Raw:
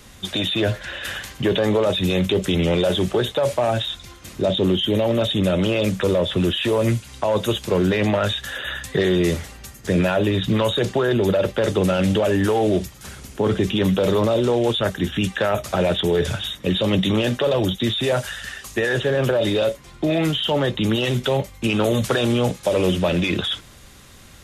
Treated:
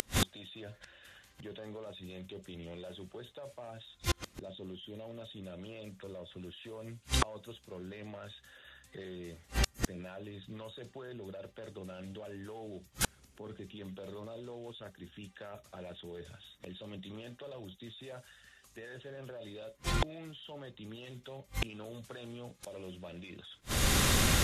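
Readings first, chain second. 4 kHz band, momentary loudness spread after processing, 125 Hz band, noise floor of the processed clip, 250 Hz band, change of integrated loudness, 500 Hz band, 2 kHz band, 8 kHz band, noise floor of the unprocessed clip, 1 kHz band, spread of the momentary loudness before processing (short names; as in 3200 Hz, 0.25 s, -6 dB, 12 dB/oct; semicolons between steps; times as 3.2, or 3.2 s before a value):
-16.0 dB, 15 LU, -17.5 dB, -64 dBFS, -22.5 dB, -19.0 dB, -25.0 dB, -15.0 dB, -3.5 dB, -45 dBFS, -16.0 dB, 6 LU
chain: upward compressor, threshold -28 dBFS; flipped gate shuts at -26 dBFS, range -38 dB; gain +11 dB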